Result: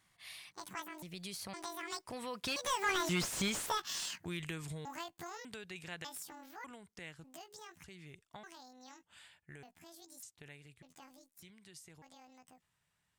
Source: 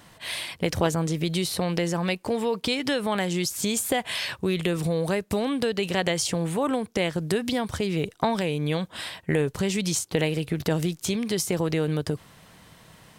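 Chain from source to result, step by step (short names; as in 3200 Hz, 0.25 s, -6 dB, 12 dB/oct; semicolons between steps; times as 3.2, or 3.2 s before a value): trilling pitch shifter +10.5 st, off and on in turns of 0.554 s; Doppler pass-by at 3.14, 27 m/s, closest 11 m; ten-band EQ 250 Hz -5 dB, 500 Hz -7 dB, 2000 Hz +4 dB, 8000 Hz +5 dB; slew limiter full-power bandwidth 120 Hz; gain -3.5 dB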